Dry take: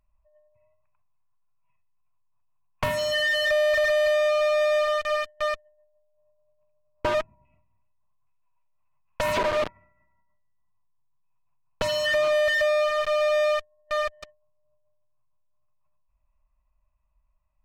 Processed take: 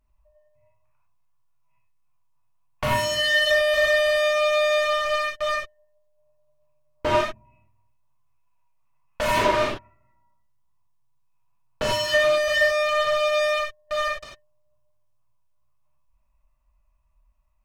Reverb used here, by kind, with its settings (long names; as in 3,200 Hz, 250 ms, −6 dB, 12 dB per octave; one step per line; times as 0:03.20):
reverb whose tail is shaped and stops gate 120 ms flat, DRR −5.5 dB
level −2 dB